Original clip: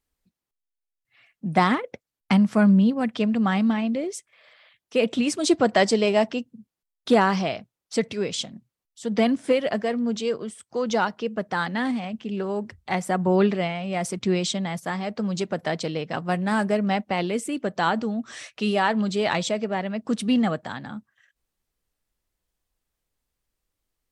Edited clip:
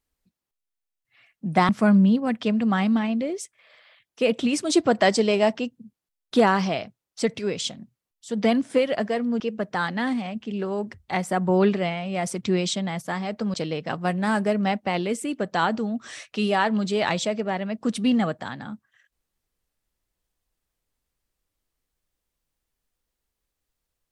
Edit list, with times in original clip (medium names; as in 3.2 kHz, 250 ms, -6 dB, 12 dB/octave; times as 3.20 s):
1.69–2.43 s: delete
10.14–11.18 s: delete
15.32–15.78 s: delete